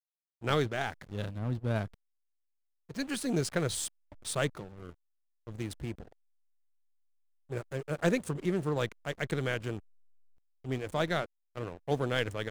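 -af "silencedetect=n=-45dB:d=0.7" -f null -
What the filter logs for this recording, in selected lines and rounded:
silence_start: 1.94
silence_end: 2.90 | silence_duration: 0.96
silence_start: 6.08
silence_end: 7.50 | silence_duration: 1.42
silence_start: 9.79
silence_end: 10.64 | silence_duration: 0.86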